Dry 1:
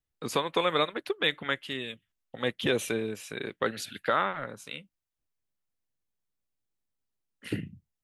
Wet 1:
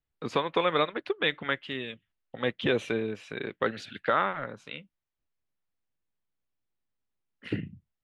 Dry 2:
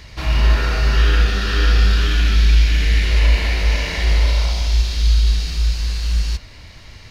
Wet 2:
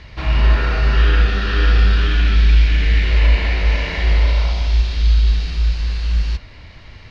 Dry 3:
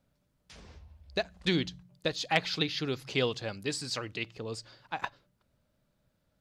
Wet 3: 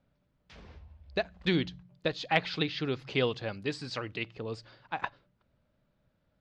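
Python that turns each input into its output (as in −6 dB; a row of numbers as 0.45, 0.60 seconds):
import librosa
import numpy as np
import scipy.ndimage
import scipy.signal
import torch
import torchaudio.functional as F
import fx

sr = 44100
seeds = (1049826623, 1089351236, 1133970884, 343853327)

y = scipy.signal.sosfilt(scipy.signal.butter(2, 3400.0, 'lowpass', fs=sr, output='sos'), x)
y = y * 10.0 ** (1.0 / 20.0)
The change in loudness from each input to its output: +0.5, +0.5, 0.0 LU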